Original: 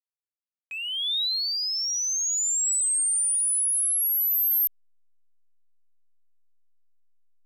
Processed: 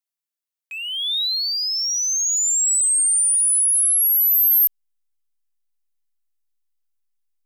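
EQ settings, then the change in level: tilt EQ +2 dB/octave; 0.0 dB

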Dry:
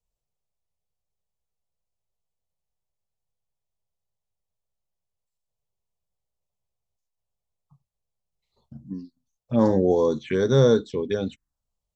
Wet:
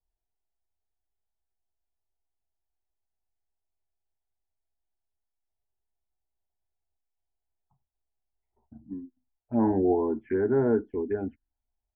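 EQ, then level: low-pass 1.5 kHz 24 dB/octave; static phaser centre 780 Hz, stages 8; 0.0 dB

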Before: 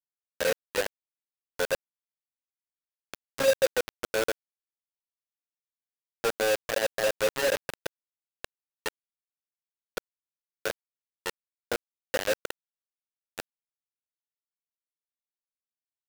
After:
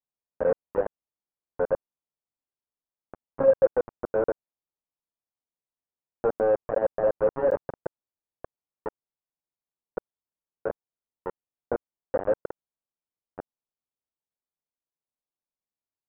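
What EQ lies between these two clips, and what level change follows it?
low-pass 1.1 kHz 24 dB/octave; distance through air 160 m; +4.5 dB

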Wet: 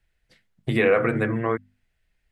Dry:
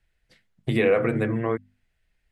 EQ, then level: dynamic bell 1.4 kHz, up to +6 dB, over -39 dBFS, Q 1.1; 0.0 dB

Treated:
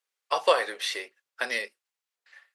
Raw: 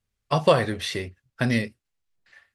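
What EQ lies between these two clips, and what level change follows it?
high-pass 500 Hz 24 dB/octave; peaking EQ 650 Hz -6 dB 0.32 oct; 0.0 dB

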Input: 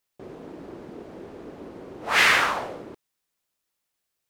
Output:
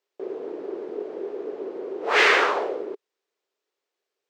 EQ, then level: boxcar filter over 4 samples; resonant high-pass 410 Hz, resonance Q 4.9; 0.0 dB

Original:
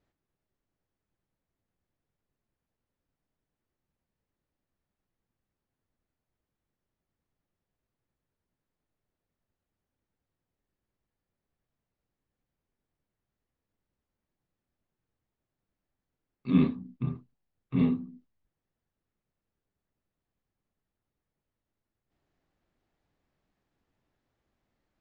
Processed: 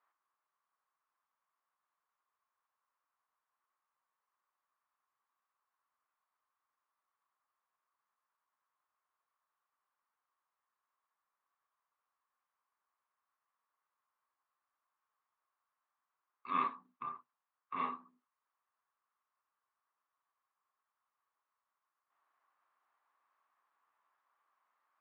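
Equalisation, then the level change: ladder band-pass 1.2 kHz, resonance 70%; +13.5 dB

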